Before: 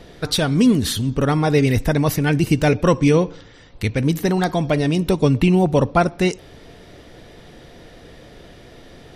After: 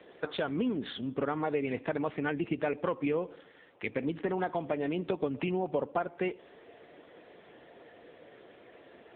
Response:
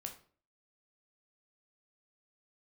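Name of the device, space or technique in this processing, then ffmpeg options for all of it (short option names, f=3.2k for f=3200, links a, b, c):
voicemail: -af "highpass=340,lowpass=3k,acompressor=threshold=-22dB:ratio=6,volume=-4.5dB" -ar 8000 -c:a libopencore_amrnb -b:a 6700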